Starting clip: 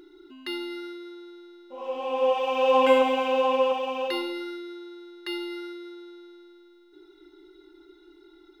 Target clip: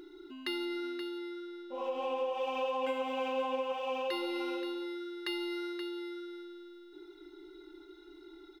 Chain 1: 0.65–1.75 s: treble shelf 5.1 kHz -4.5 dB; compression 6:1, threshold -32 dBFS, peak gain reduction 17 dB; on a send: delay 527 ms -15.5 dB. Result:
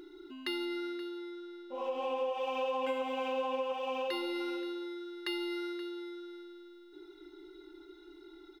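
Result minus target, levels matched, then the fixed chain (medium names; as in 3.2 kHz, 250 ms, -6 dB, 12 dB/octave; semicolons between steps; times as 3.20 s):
echo-to-direct -6.5 dB
0.65–1.75 s: treble shelf 5.1 kHz -4.5 dB; compression 6:1, threshold -32 dBFS, peak gain reduction 17 dB; on a send: delay 527 ms -9 dB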